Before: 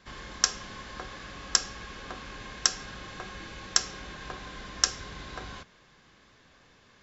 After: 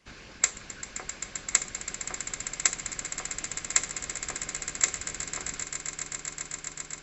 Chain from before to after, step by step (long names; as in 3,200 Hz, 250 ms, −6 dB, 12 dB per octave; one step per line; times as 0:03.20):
formants moved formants +5 semitones
harmonic and percussive parts rebalanced harmonic −12 dB
echo that builds up and dies away 131 ms, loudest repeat 8, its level −13 dB